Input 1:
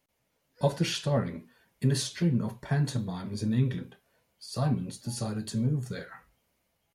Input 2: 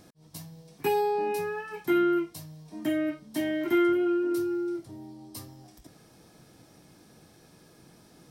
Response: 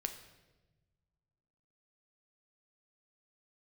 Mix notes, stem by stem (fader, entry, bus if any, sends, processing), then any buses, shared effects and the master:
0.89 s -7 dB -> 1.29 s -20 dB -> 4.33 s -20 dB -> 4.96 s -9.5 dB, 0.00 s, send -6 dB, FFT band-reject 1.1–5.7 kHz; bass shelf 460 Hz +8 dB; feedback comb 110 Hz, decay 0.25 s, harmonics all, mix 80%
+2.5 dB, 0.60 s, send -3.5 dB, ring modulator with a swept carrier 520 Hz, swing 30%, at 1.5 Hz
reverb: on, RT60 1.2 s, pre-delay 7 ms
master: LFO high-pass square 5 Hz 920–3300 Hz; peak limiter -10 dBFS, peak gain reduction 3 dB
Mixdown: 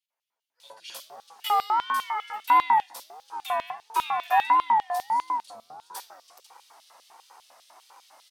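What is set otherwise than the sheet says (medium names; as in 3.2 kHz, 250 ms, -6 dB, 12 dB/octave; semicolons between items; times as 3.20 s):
stem 1: missing FFT band-reject 1.1–5.7 kHz; reverb return -6.5 dB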